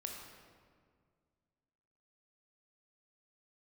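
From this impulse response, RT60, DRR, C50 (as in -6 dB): 1.9 s, 0.5 dB, 2.5 dB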